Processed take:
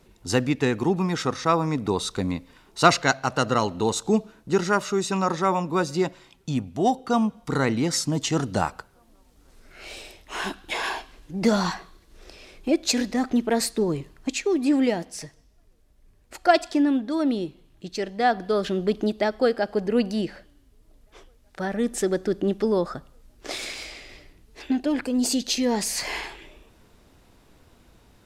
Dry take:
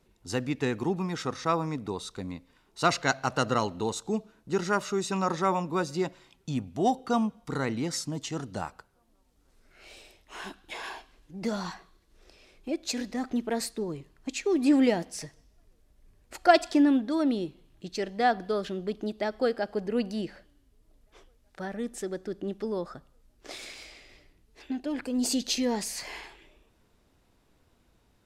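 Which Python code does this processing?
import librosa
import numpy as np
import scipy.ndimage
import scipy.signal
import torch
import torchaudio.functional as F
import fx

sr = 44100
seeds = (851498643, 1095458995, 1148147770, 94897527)

y = fx.rider(x, sr, range_db=5, speed_s=0.5)
y = y * 10.0 ** (5.5 / 20.0)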